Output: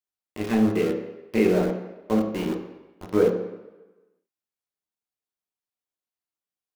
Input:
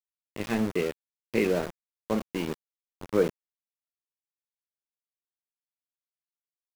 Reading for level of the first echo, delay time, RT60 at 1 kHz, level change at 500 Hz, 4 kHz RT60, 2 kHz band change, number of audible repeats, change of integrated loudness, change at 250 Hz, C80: none, none, 1.1 s, +5.0 dB, 0.90 s, +1.0 dB, none, +5.0 dB, +7.0 dB, 8.5 dB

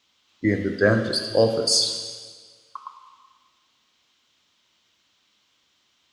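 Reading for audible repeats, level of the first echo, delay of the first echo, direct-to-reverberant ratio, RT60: none, none, none, 6.0 dB, 1.6 s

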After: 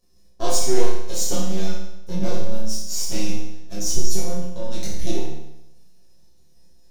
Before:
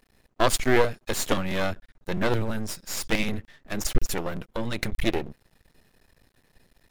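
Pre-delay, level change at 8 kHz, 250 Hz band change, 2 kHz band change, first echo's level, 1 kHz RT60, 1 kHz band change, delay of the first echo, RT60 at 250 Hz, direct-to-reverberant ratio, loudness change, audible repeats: 6 ms, +7.0 dB, +0.5 dB, -11.0 dB, none, 0.85 s, -4.0 dB, none, 0.85 s, -10.0 dB, +0.5 dB, none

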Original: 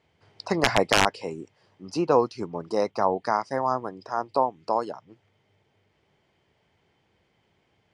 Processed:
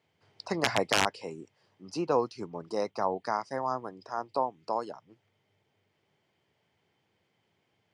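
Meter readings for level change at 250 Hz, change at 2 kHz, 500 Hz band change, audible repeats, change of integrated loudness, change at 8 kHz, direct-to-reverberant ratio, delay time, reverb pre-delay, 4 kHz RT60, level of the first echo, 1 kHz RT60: -6.5 dB, -5.5 dB, -6.5 dB, none, -5.5 dB, -4.0 dB, none, none, none, none, none, none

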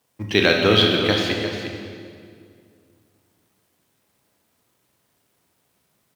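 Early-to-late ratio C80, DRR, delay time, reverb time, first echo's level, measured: 3.0 dB, 0.5 dB, 0.353 s, 2.2 s, -10.0 dB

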